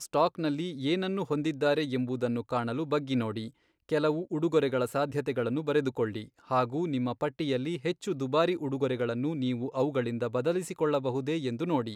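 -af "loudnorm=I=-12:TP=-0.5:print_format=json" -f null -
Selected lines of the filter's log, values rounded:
"input_i" : "-30.2",
"input_tp" : "-12.2",
"input_lra" : "0.9",
"input_thresh" : "-40.3",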